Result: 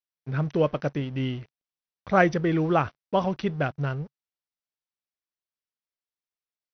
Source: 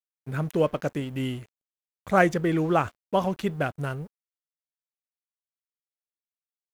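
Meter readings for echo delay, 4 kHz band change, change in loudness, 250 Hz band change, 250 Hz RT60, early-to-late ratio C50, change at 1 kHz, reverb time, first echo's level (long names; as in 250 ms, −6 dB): no echo audible, 0.0 dB, +0.5 dB, +0.5 dB, no reverb audible, no reverb audible, 0.0 dB, no reverb audible, no echo audible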